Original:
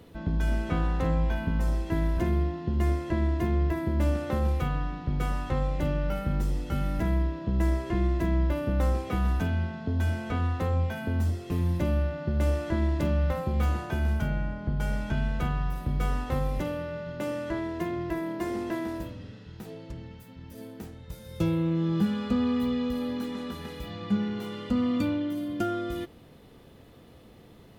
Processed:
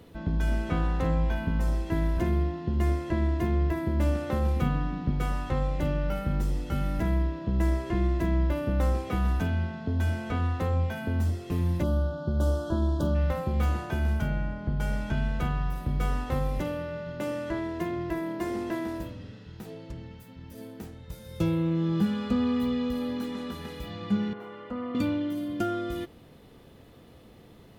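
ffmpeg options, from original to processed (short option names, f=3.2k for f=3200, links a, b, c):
-filter_complex "[0:a]asettb=1/sr,asplit=3[a][b][c];[a]atrim=end=4.564[d];[b]atrim=start=4.56:end=5.11,asetpts=PTS-STARTPTS,afade=t=in:d=0.004:c=qsin,afade=t=out:st=0.546:d=0.004:c=qsin,equalizer=f=220:t=o:w=0.85:g=9.5[e];[c]atrim=start=5.106[f];[d][e]acrossfade=d=0.004:c1=hsin:c2=qsin[g];[g][f]acrossfade=d=0.004:c1=qsin:c2=hsin,asplit=3[h][i][j];[h]afade=t=out:st=11.82:d=0.02[k];[i]asuperstop=centerf=2200:order=8:qfactor=1.4,afade=t=in:st=11.82:d=0.02,afade=t=out:st=13.14:d=0.02[l];[j]afade=t=in:st=13.14:d=0.02[m];[k][l][m]amix=inputs=3:normalize=0,asettb=1/sr,asplit=3[n][o][p];[n]atrim=end=24.334[q];[o]atrim=start=24.33:end=24.95,asetpts=PTS-STARTPTS,afade=t=in:d=0.004:c=qsin,afade=t=out:st=0.616:d=0.004:c=qsin,acrossover=split=400 2100:gain=0.224 1 0.1[r][s][t];[r][s][t]amix=inputs=3:normalize=0[u];[p]atrim=start=24.946[v];[q][u]acrossfade=d=0.004:c1=hsin:c2=qsin[w];[w][v]acrossfade=d=0.004:c1=qsin:c2=hsin"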